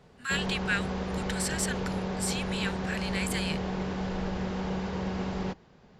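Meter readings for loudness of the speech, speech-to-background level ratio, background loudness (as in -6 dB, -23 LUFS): -33.5 LUFS, -0.5 dB, -33.0 LUFS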